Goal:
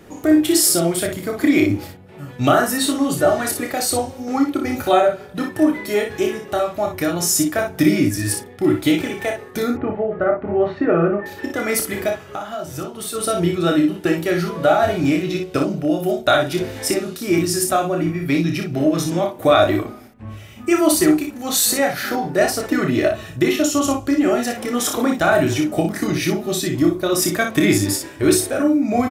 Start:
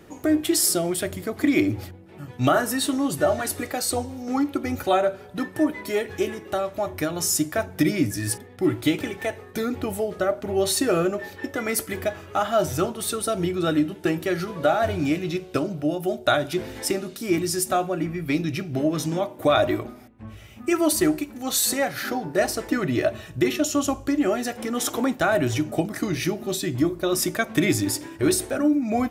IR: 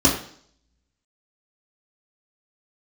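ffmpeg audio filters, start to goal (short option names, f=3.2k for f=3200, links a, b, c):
-filter_complex "[0:a]asettb=1/sr,asplit=3[a][b][c];[a]atrim=end=9.714[d];[b]atrim=start=9.71:end=11.26,asetpts=PTS-STARTPTS,afade=t=in:d=0.004:c=qsin,afade=t=out:st=1.546:d=0.004:c=qsin,lowpass=f=2k:w=0.5412,lowpass=f=2k:w=1.3066[e];[c]atrim=start=11.256[f];[d][e]acrossfade=d=0.004:c1=hsin:c2=qsin[g];[g][f]acrossfade=d=0.004:c1=qsin:c2=hsin,asplit=3[h][i][j];[h]afade=t=out:st=12.16:d=0.02[k];[i]acompressor=threshold=-30dB:ratio=10,afade=t=in:st=12.16:d=0.02,afade=t=out:st=13.14:d=0.02[l];[j]afade=t=in:st=13.14:d=0.02[m];[k][l][m]amix=inputs=3:normalize=0,asplit=2[n][o];[o]aecho=0:1:29|59:0.501|0.501[p];[n][p]amix=inputs=2:normalize=0,volume=3.5dB"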